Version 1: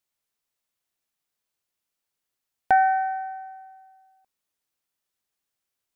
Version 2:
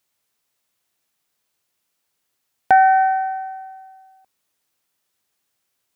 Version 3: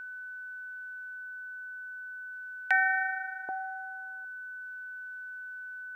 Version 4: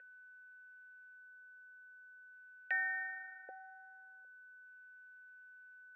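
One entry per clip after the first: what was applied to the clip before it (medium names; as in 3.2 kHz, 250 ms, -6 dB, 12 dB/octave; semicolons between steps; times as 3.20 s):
high-pass 62 Hz; in parallel at +2 dB: peak limiter -20.5 dBFS, peak gain reduction 10.5 dB; on the sum: trim +2.5 dB
LFO high-pass square 0.43 Hz 350–2000 Hz; whistle 1.5 kHz -34 dBFS; trim -5 dB
vowel filter e; trim +1 dB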